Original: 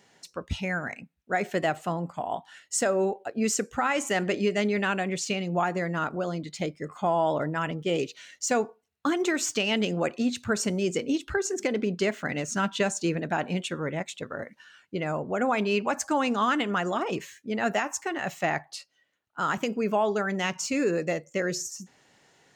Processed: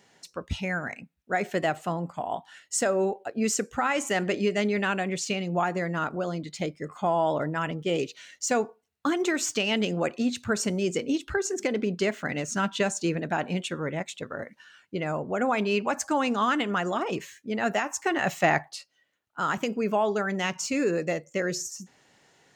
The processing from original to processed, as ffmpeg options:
-filter_complex "[0:a]asettb=1/sr,asplit=3[a][b][c];[a]atrim=end=18.044[d];[b]atrim=start=18.04:end=18.69,asetpts=PTS-STARTPTS,afade=t=in:d=0.004:c=qsin,afade=t=out:st=0.646:d=0.004:c=qsin,acontrast=25[e];[c]atrim=start=18.686[f];[d][e]acrossfade=d=0.004:c1=hsin:c2=qsin[g];[g][f]acrossfade=d=0.004:c1=qsin:c2=hsin"

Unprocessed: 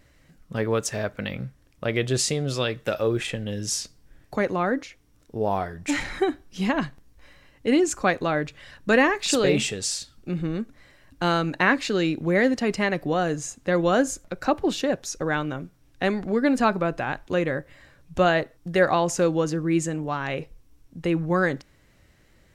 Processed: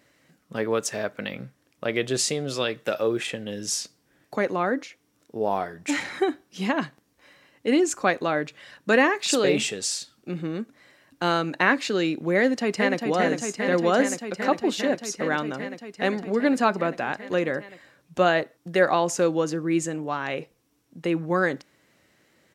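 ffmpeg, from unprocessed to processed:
-filter_complex "[0:a]asplit=2[a][b];[b]afade=t=in:st=12.39:d=0.01,afade=t=out:st=12.98:d=0.01,aecho=0:1:400|800|1200|1600|2000|2400|2800|3200|3600|4000|4400|4800:0.562341|0.47799|0.406292|0.345348|0.293546|0.249514|0.212087|0.180274|0.153233|0.130248|0.110711|0.094104[c];[a][c]amix=inputs=2:normalize=0,highpass=200"

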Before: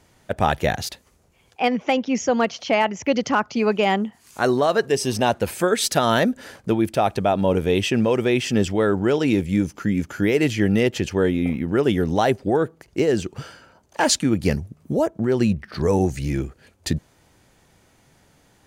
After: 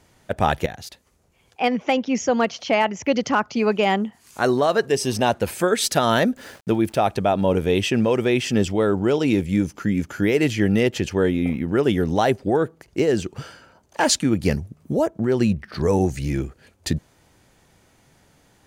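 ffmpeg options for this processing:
-filter_complex "[0:a]asettb=1/sr,asplit=3[a][b][c];[a]atrim=end=6.364[d];[b]atrim=start=6.36:end=6.98,asetpts=PTS-STARTPTS,afade=t=in:d=0.004:c=qsin,afade=t=out:st=0.616:d=0.004:c=qsin,aeval=exprs='val(0)*gte(abs(val(0)),0.00473)':c=same[e];[c]atrim=start=6.976[f];[d][e]acrossfade=d=0.004:c1=hsin:c2=qsin[g];[g][f]acrossfade=d=0.004:c1=qsin:c2=hsin,asettb=1/sr,asplit=3[h][i][j];[h]atrim=end=8.634[k];[i]atrim=start=8.63:end=9.3,asetpts=PTS-STARTPTS,afade=t=in:d=0.004:c=qsin,afade=t=out:st=0.666:d=0.004:c=qsin,equalizer=f=1.7k:w=3.5:g=-5.5[l];[j]atrim=start=9.296[m];[k][l]acrossfade=d=0.004:c1=hsin:c2=qsin[n];[n][m]acrossfade=d=0.004:c1=qsin:c2=hsin,asplit=2[o][p];[o]atrim=end=0.66,asetpts=PTS-STARTPTS,afade=t=out:st=0.656:d=0.004:c=hsin:silence=0.188365[q];[p]atrim=start=0.66,asetpts=PTS-STARTPTS,afade=t=in:d=1.25:c=qsin:silence=0.188365[r];[q][r]concat=n=2:v=0:a=1"

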